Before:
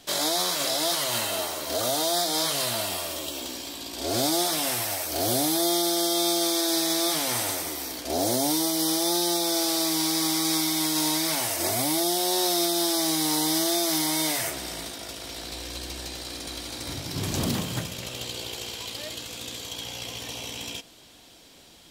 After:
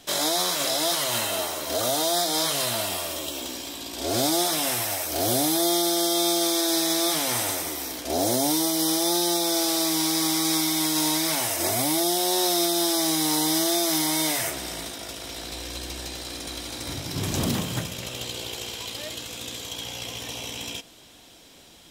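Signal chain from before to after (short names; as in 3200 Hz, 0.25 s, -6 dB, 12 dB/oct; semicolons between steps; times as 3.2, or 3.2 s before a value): notch 4500 Hz, Q 14; gain +1.5 dB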